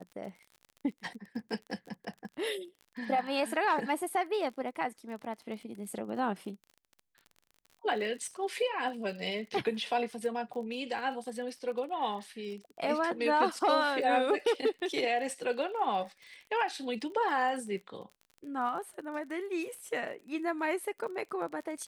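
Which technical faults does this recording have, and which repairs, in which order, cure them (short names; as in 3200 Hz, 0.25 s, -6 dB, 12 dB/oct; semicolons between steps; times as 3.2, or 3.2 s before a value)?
crackle 31/s -42 dBFS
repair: de-click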